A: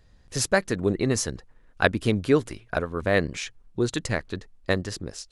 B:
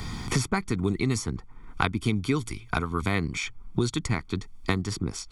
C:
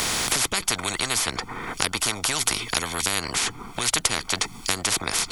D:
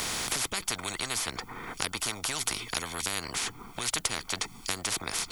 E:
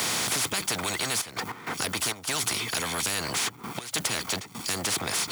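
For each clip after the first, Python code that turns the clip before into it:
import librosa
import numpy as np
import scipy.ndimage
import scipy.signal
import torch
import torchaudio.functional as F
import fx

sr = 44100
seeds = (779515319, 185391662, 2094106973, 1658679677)

y1 = x + 0.93 * np.pad(x, (int(0.9 * sr / 1000.0), 0))[:len(x)]
y1 = fx.band_squash(y1, sr, depth_pct=100)
y1 = y1 * librosa.db_to_amplitude(-4.0)
y2 = fx.spectral_comp(y1, sr, ratio=10.0)
y2 = y2 * librosa.db_to_amplitude(4.5)
y3 = fx.dmg_noise_colour(y2, sr, seeds[0], colour='violet', level_db=-55.0)
y3 = y3 * librosa.db_to_amplitude(-7.5)
y4 = fx.step_gate(y3, sr, bpm=99, pattern='xxxxxxxx.x.xxx.', floor_db=-24.0, edge_ms=4.5)
y4 = fx.power_curve(y4, sr, exponent=0.5)
y4 = scipy.signal.sosfilt(scipy.signal.butter(4, 94.0, 'highpass', fs=sr, output='sos'), y4)
y4 = y4 * librosa.db_to_amplitude(-6.0)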